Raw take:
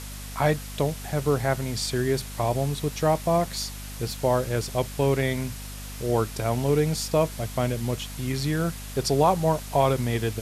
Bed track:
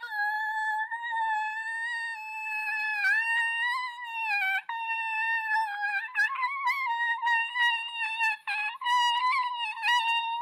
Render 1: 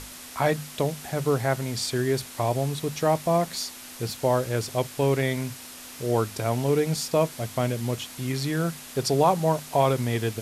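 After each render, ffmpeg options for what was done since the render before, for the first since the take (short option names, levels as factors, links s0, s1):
-af "bandreject=f=50:t=h:w=6,bandreject=f=100:t=h:w=6,bandreject=f=150:t=h:w=6,bandreject=f=200:t=h:w=6"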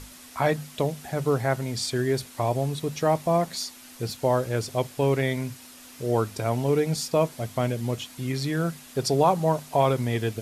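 -af "afftdn=nr=6:nf=-42"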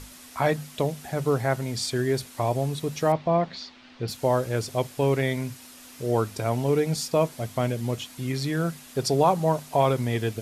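-filter_complex "[0:a]asettb=1/sr,asplit=3[s0][s1][s2];[s0]atrim=end=3.124[s3];[s1]atrim=start=3.12:end=4.08,asetpts=PTS-STARTPTS,afade=t=in:d=0.004:c=qsin,afade=t=out:st=0.956:d=0.004:c=qsin,lowpass=f=4100:w=0.5412,lowpass=f=4100:w=1.3066[s4];[s2]atrim=start=4.076[s5];[s3][s4]acrossfade=d=0.004:c1=hsin:c2=qsin[s6];[s6][s5]acrossfade=d=0.004:c1=qsin:c2=hsin"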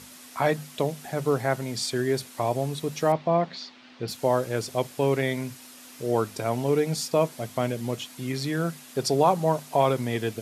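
-af "highpass=140"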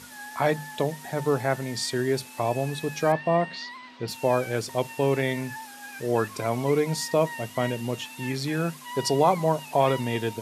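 -filter_complex "[1:a]volume=0.237[s0];[0:a][s0]amix=inputs=2:normalize=0"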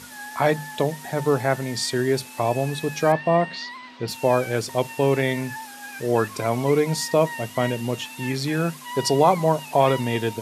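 -af "volume=1.5"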